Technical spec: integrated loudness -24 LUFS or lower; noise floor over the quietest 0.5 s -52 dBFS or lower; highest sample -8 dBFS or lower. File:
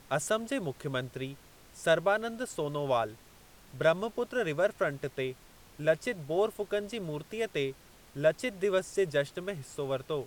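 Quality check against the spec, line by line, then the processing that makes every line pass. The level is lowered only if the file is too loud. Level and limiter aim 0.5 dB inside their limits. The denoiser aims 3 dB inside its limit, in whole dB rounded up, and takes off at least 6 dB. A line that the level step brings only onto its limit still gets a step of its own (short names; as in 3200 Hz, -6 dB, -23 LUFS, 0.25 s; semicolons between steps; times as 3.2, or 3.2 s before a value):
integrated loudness -32.0 LUFS: OK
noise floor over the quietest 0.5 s -56 dBFS: OK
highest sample -13.0 dBFS: OK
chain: none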